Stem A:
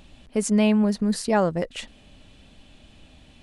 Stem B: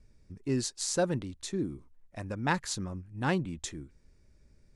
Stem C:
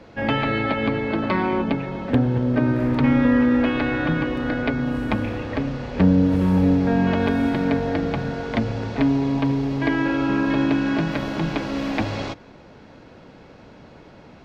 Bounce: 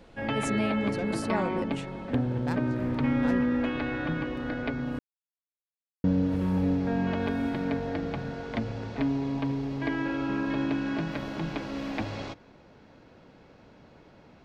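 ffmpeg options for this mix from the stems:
-filter_complex "[0:a]volume=-10dB,asplit=2[a][b];[1:a]highshelf=f=6.7k:g=6,asoftclip=type=tanh:threshold=-18.5dB,adynamicsmooth=sensitivity=2.5:basefreq=690,volume=-6dB[c];[2:a]volume=-8.5dB,asplit=3[d][e][f];[d]atrim=end=4.99,asetpts=PTS-STARTPTS,afade=t=out:st=4.986:d=0.004:c=hsin[g];[e]atrim=start=4.99:end=6.04,asetpts=PTS-STARTPTS,volume=0[h];[f]atrim=start=6.04,asetpts=PTS-STARTPTS,afade=t=in:d=0.004:c=hsin[i];[g][h][i]concat=n=3:v=0:a=1[j];[b]apad=whole_len=209639[k];[c][k]sidechaincompress=threshold=-33dB:ratio=8:attack=16:release=178[l];[a][l][j]amix=inputs=3:normalize=0"

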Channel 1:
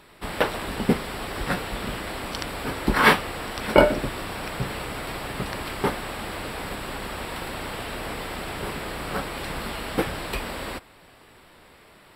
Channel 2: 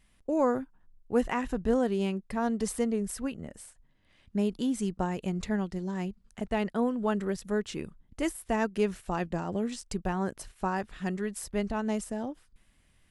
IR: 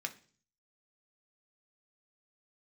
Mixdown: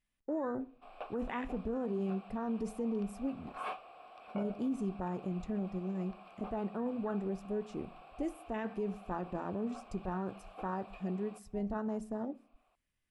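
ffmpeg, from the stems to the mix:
-filter_complex "[0:a]asplit=3[a][b][c];[a]bandpass=f=730:t=q:w=8,volume=0dB[d];[b]bandpass=f=1.09k:t=q:w=8,volume=-6dB[e];[c]bandpass=f=2.44k:t=q:w=8,volume=-9dB[f];[d][e][f]amix=inputs=3:normalize=0,adelay=600,volume=-11.5dB[g];[1:a]afwtdn=0.02,volume=-6dB,asplit=2[h][i];[i]volume=-4dB[j];[2:a]atrim=start_sample=2205[k];[j][k]afir=irnorm=-1:irlink=0[l];[g][h][l]amix=inputs=3:normalize=0,alimiter=level_in=4dB:limit=-24dB:level=0:latency=1:release=15,volume=-4dB"

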